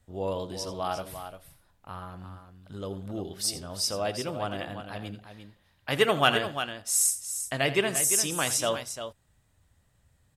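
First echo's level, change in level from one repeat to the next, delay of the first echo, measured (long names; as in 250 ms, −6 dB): −14.5 dB, repeats not evenly spaced, 83 ms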